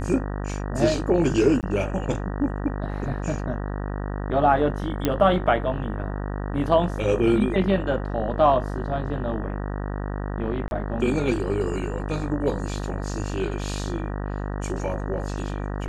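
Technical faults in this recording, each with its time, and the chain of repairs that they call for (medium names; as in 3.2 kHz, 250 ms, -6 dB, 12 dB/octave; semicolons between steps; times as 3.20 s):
buzz 50 Hz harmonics 38 -29 dBFS
1.61–1.63 s: dropout 18 ms
5.05 s: pop -8 dBFS
10.68–10.71 s: dropout 31 ms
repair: de-click; de-hum 50 Hz, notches 38; interpolate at 1.61 s, 18 ms; interpolate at 10.68 s, 31 ms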